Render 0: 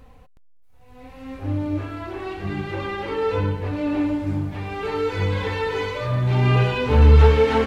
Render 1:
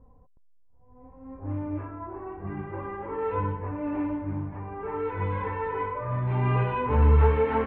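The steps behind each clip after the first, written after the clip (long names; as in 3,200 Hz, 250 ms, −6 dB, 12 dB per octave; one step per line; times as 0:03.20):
low-pass that shuts in the quiet parts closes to 550 Hz, open at −14 dBFS
low-pass filter 2,300 Hz 24 dB per octave
parametric band 1,000 Hz +11 dB 0.21 octaves
level −7 dB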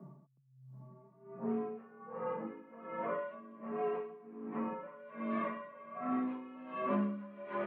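downward compressor 3 to 1, threshold −38 dBFS, peak gain reduction 16.5 dB
frequency shifter +130 Hz
tremolo with a sine in dB 1.3 Hz, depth 19 dB
level +4 dB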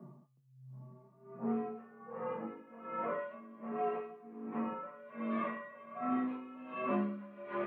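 tuned comb filter 120 Hz, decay 0.27 s, harmonics all, mix 80%
level +9 dB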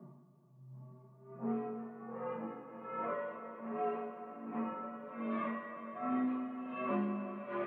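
convolution reverb RT60 5.5 s, pre-delay 78 ms, DRR 6.5 dB
level −1.5 dB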